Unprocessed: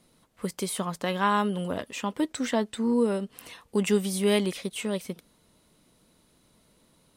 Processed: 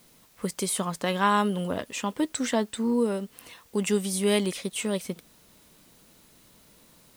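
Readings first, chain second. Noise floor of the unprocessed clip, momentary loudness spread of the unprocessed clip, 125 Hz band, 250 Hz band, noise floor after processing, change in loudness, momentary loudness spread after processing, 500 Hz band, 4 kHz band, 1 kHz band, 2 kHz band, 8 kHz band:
-65 dBFS, 12 LU, +0.5 dB, 0.0 dB, -58 dBFS, +0.5 dB, 11 LU, 0.0 dB, +1.5 dB, +1.5 dB, +1.0 dB, +4.5 dB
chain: dynamic bell 8 kHz, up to +5 dB, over -47 dBFS, Q 0.92; gain riding 2 s; word length cut 10-bit, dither triangular

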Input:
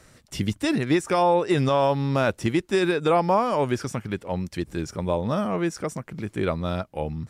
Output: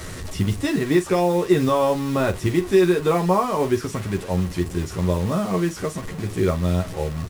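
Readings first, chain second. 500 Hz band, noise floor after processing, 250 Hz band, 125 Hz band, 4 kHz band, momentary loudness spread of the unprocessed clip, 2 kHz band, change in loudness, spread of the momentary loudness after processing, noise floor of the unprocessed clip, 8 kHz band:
+3.0 dB, -35 dBFS, +3.5 dB, +4.5 dB, +0.5 dB, 10 LU, +0.5 dB, +2.5 dB, 9 LU, -57 dBFS, +4.5 dB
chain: one-bit delta coder 64 kbps, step -30 dBFS; bass shelf 200 Hz +9 dB; modulation noise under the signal 28 dB; small resonant body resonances 400/1100/1900 Hz, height 7 dB; on a send: early reflections 11 ms -4 dB, 45 ms -12.5 dB; on the sum: trim -3 dB

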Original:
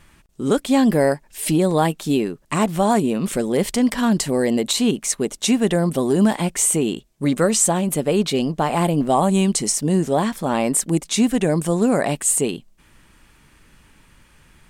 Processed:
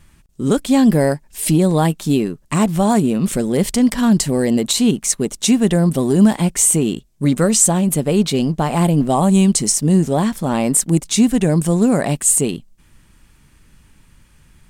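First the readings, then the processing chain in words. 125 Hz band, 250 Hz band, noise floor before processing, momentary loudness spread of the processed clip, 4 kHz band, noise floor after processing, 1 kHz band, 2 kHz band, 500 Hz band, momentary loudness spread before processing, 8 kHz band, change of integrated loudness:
+6.5 dB, +4.5 dB, -54 dBFS, 6 LU, +2.0 dB, -52 dBFS, 0.0 dB, 0.0 dB, +0.5 dB, 5 LU, +4.5 dB, +3.5 dB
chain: tone controls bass +8 dB, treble +5 dB; in parallel at -5 dB: hysteresis with a dead band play -28 dBFS; on the sum: trim -4 dB

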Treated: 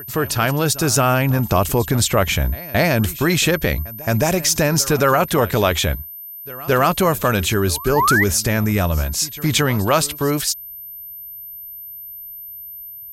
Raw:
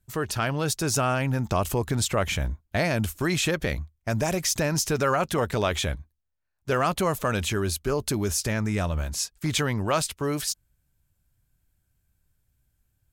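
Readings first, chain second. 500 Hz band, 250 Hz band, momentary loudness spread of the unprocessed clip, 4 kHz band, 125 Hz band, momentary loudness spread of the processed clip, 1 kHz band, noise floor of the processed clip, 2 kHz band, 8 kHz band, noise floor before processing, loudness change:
+8.0 dB, +8.0 dB, 6 LU, +8.0 dB, +8.0 dB, 16 LU, +9.0 dB, -35 dBFS, +9.5 dB, +8.0 dB, -74 dBFS, +8.5 dB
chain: painted sound rise, 7.96–8.24 s, 830–2100 Hz -24 dBFS; whistle 13 kHz -41 dBFS; pre-echo 220 ms -19 dB; trim +8 dB

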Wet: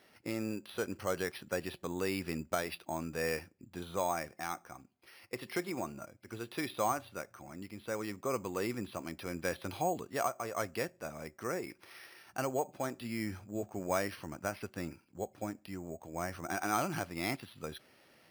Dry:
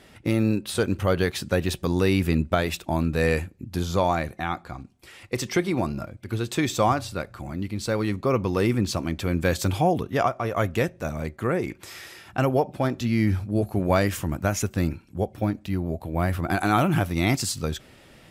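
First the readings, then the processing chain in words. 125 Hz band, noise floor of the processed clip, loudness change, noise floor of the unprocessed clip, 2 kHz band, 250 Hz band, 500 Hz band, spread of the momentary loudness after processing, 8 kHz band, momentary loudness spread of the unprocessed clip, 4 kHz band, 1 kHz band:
-20.0 dB, -67 dBFS, -12.5 dB, -52 dBFS, -10.0 dB, -15.0 dB, -11.5 dB, 11 LU, -9.0 dB, 9 LU, -12.5 dB, -10.0 dB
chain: high-pass 420 Hz 6 dB/octave; careless resampling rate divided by 6×, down filtered, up hold; trim -9 dB

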